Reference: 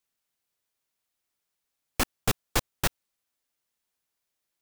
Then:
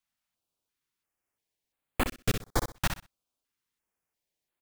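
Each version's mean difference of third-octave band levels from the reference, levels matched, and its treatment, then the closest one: 5.0 dB: treble shelf 4.3 kHz -7 dB; on a send: feedback delay 63 ms, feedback 21%, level -7.5 dB; on the sum: step-sequenced notch 2.9 Hz 430–5600 Hz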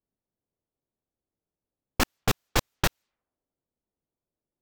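2.0 dB: level-controlled noise filter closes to 440 Hz, open at -28.5 dBFS; peaking EQ 10 kHz -6.5 dB 0.63 oct; in parallel at -3 dB: compressor with a negative ratio -27 dBFS, ratio -0.5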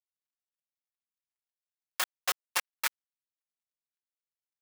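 9.5 dB: dead-time distortion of 0.2 ms; high-pass 1.1 kHz 12 dB/octave; comb 5.5 ms, depth 90%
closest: second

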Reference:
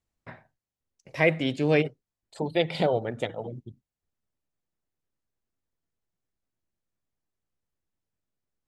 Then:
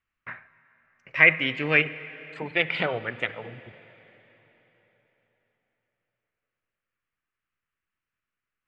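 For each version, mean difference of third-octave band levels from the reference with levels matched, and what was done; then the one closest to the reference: 6.5 dB: low-pass 4.8 kHz 12 dB/octave; high-order bell 1.8 kHz +15.5 dB; plate-style reverb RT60 4.1 s, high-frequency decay 0.9×, DRR 15 dB; trim -5 dB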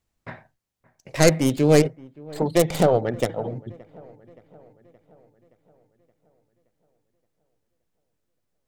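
4.0 dB: tracing distortion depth 0.31 ms; dynamic bell 2.7 kHz, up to -7 dB, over -42 dBFS, Q 0.92; on a send: feedback echo behind a low-pass 572 ms, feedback 55%, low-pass 1.9 kHz, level -23 dB; on the sum: trim +6.5 dB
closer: second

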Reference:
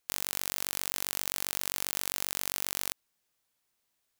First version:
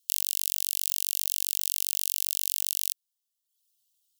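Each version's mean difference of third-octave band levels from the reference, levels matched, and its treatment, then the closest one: 22.0 dB: reverb removal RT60 0.79 s; steep high-pass 2.8 kHz 96 dB/octave; treble shelf 6.2 kHz +6 dB; trim +3 dB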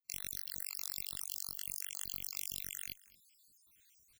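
13.0 dB: random holes in the spectrogram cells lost 73%; reverse; upward compressor, threshold -49 dBFS; reverse; amplifier tone stack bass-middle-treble 6-0-2; delay 224 ms -21 dB; trim +12.5 dB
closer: second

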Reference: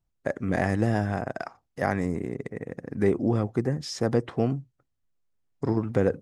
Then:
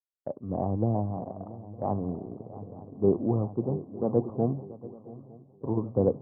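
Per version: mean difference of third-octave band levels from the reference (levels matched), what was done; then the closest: 9.5 dB: steep low-pass 1.1 kHz 72 dB/octave; on a send: shuffle delay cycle 910 ms, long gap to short 3:1, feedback 53%, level -10 dB; on the sum: three bands expanded up and down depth 100%; trim -3 dB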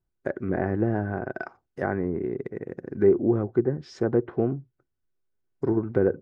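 5.5 dB: low-pass that closes with the level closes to 1.6 kHz, closed at -22 dBFS; treble shelf 4.2 kHz -10.5 dB; small resonant body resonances 370/1500 Hz, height 11 dB, ringing for 45 ms; trim -2.5 dB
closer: second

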